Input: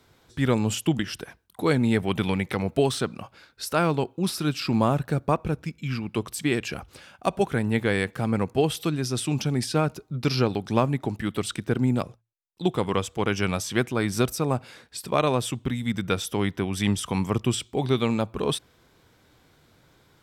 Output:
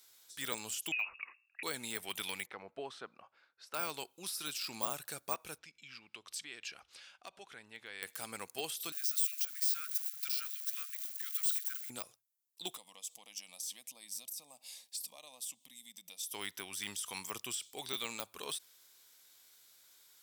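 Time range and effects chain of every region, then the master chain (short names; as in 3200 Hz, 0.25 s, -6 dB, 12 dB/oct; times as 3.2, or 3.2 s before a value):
0.92–1.63 notches 60/120 Hz + inverted band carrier 2700 Hz
2.46–3.74 LPF 1300 Hz + low shelf 130 Hz -7.5 dB
5.58–8.03 LPF 3900 Hz + compressor 2:1, threshold -38 dBFS + hard clip -22.5 dBFS
8.92–11.9 switching spikes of -23 dBFS + steep high-pass 1300 Hz 72 dB/oct + high shelf 6600 Hz -4 dB
12.77–16.34 compressor 3:1, threshold -38 dBFS + fixed phaser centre 390 Hz, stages 6
whole clip: tone controls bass -7 dB, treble +4 dB; de-esser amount 85%; pre-emphasis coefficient 0.97; gain +3 dB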